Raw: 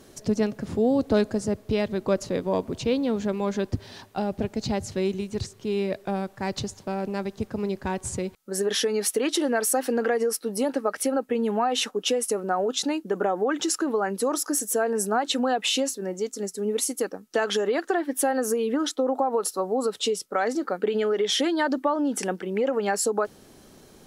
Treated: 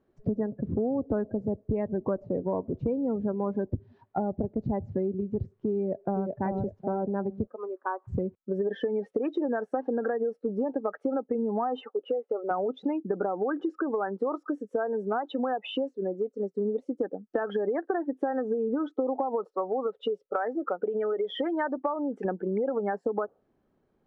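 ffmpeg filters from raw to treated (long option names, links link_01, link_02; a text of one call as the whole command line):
ffmpeg -i in.wav -filter_complex "[0:a]asplit=2[link_01][link_02];[link_02]afade=type=in:start_time=5.78:duration=0.01,afade=type=out:start_time=6.3:duration=0.01,aecho=0:1:380|760|1140|1520|1900:0.630957|0.252383|0.100953|0.0403813|0.0161525[link_03];[link_01][link_03]amix=inputs=2:normalize=0,asplit=3[link_04][link_05][link_06];[link_04]afade=type=out:start_time=7.46:duration=0.02[link_07];[link_05]highpass=frequency=400:width=0.5412,highpass=frequency=400:width=1.3066,equalizer=frequency=410:width_type=q:width=4:gain=-8,equalizer=frequency=600:width_type=q:width=4:gain=-5,equalizer=frequency=850:width_type=q:width=4:gain=-4,equalizer=frequency=1200:width_type=q:width=4:gain=8,equalizer=frequency=2200:width_type=q:width=4:gain=-8,lowpass=frequency=2400:width=0.5412,lowpass=frequency=2400:width=1.3066,afade=type=in:start_time=7.46:duration=0.02,afade=type=out:start_time=8.07:duration=0.02[link_08];[link_06]afade=type=in:start_time=8.07:duration=0.02[link_09];[link_07][link_08][link_09]amix=inputs=3:normalize=0,asettb=1/sr,asplit=3[link_10][link_11][link_12];[link_10]atrim=end=11.814[link_13];[link_11]atrim=start=11.81:end=12.51,asetpts=PTS-STARTPTS,afade=type=in:duration=0.004:curve=qsin,afade=type=out:start_time=0.696:duration=0.004:curve=qsin,highpass=460,lowpass=2300[link_14];[link_12]atrim=start=12.506[link_15];[link_13][link_14]acrossfade=duration=0.004:curve1=hsin:curve2=qsin[link_16];[link_16][link_15]acrossfade=duration=0.004:curve1=qsin:curve2=hsin,asettb=1/sr,asplit=3[link_17][link_18][link_19];[link_17]atrim=end=13.804[link_20];[link_18]atrim=start=13.8:end=16.56,asetpts=PTS-STARTPTS,afade=type=in:duration=0.004:curve=qsin,afade=type=out:start_time=2.756:duration=0.004:curve=qsin,lowshelf=frequency=230:gain=-10[link_21];[link_19]atrim=start=16.556[link_22];[link_20][link_21]acrossfade=duration=0.004:curve1=hsin:curve2=qsin[link_23];[link_23][link_22]acrossfade=duration=0.004:curve1=qsin:curve2=hsin,asettb=1/sr,asplit=3[link_24][link_25][link_26];[link_24]atrim=end=19.444[link_27];[link_25]atrim=start=19.44:end=22.25,asetpts=PTS-STARTPTS,afade=type=in:duration=0.004:curve=qsin,afade=type=out:start_time=2.806:duration=0.004:curve=qsin,equalizer=frequency=220:width_type=o:width=1.6:gain=-8[link_28];[link_26]atrim=start=22.246[link_29];[link_27][link_28]acrossfade=duration=0.004:curve1=hsin:curve2=qsin[link_30];[link_30][link_29]acrossfade=duration=0.004:curve1=qsin:curve2=hsin,lowpass=1600,afftdn=noise_reduction=26:noise_floor=-32,acompressor=threshold=-33dB:ratio=5,volume=6.5dB" out.wav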